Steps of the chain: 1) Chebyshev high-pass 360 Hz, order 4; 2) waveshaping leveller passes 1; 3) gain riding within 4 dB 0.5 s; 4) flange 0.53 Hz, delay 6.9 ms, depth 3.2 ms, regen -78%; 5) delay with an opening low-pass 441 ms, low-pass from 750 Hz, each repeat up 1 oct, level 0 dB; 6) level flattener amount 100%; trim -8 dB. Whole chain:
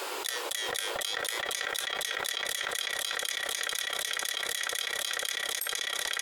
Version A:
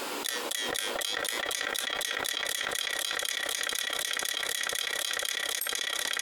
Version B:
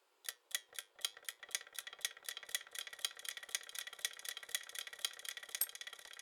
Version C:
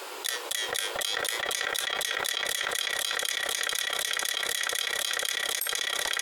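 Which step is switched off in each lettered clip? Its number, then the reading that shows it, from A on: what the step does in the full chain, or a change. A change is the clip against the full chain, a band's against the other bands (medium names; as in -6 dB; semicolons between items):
1, loudness change +1.0 LU; 6, crest factor change +6.0 dB; 3, loudness change +3.0 LU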